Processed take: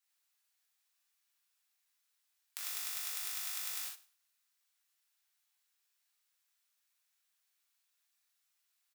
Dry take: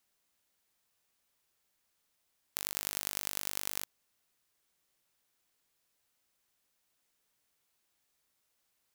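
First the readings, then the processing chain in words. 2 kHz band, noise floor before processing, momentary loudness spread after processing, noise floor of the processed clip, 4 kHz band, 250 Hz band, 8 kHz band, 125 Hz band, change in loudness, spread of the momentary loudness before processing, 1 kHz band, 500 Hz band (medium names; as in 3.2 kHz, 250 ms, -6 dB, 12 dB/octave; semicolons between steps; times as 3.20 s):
-3.0 dB, -79 dBFS, 8 LU, -81 dBFS, -2.0 dB, under -25 dB, -2.0 dB, under -35 dB, -2.0 dB, 6 LU, -6.0 dB, -15.5 dB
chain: high-pass 1.2 kHz 12 dB/octave; on a send: feedback delay 103 ms, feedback 22%, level -19 dB; on the sum: gated-style reverb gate 130 ms flat, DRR -5.5 dB; trim -8.5 dB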